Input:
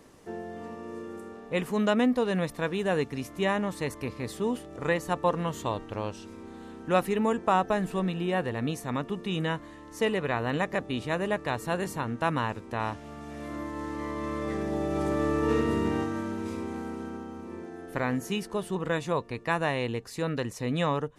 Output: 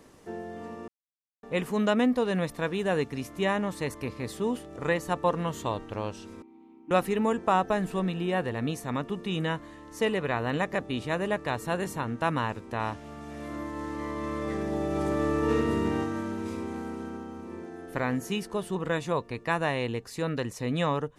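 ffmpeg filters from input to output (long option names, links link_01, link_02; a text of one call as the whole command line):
ffmpeg -i in.wav -filter_complex "[0:a]asettb=1/sr,asplit=3[link_01][link_02][link_03];[link_01]atrim=end=6.424[link_04];[link_02]atrim=start=6.42:end=6.91,asetpts=PTS-STARTPTS,afade=type=in:duration=0.004:curve=qsin,afade=type=out:start_time=0.486:duration=0.004:curve=qsin,asplit=3[link_05][link_06][link_07];[link_05]bandpass=frequency=300:width_type=q:width=8,volume=0dB[link_08];[link_06]bandpass=frequency=870:width_type=q:width=8,volume=-6dB[link_09];[link_07]bandpass=frequency=2240:width_type=q:width=8,volume=-9dB[link_10];[link_08][link_09][link_10]amix=inputs=3:normalize=0[link_11];[link_03]atrim=start=6.906[link_12];[link_04][link_11]acrossfade=duration=0.004:curve1=hsin:curve2=qsin[link_13];[link_13][link_12]acrossfade=duration=0.004:curve1=qsin:curve2=hsin,asettb=1/sr,asplit=3[link_14][link_15][link_16];[link_14]atrim=end=11.634[link_17];[link_15]atrim=start=11.63:end=12.08,asetpts=PTS-STARTPTS,afade=type=in:duration=0.004:curve=qsin,afade=type=out:start_time=0.446:duration=0.004:curve=qsin,bandreject=frequency=4700:width=10[link_18];[link_16]atrim=start=12.076[link_19];[link_17][link_18]acrossfade=duration=0.004:curve1=hsin:curve2=qsin[link_20];[link_20][link_19]acrossfade=duration=0.004:curve1=qsin:curve2=hsin,asplit=3[link_21][link_22][link_23];[link_21]atrim=end=0.88,asetpts=PTS-STARTPTS,afade=type=out:start_time=0.876:duration=0.004:curve=hsin[link_24];[link_22]atrim=start=0.88:end=1.43,asetpts=PTS-STARTPTS,volume=0[link_25];[link_23]atrim=start=1.43,asetpts=PTS-STARTPTS,afade=type=in:duration=0.004:curve=hsin[link_26];[link_24][link_25][link_26]concat=n=3:v=0:a=1" out.wav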